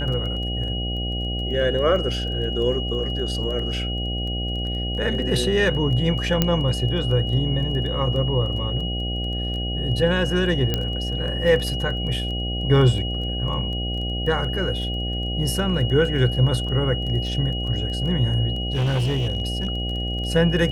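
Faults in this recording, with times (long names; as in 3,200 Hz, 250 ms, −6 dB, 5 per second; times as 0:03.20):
mains buzz 60 Hz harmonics 13 −27 dBFS
surface crackle 12 per second −30 dBFS
whistle 2,900 Hz −29 dBFS
0:06.42: click −4 dBFS
0:10.74: click −8 dBFS
0:18.60–0:20.25: clipping −18.5 dBFS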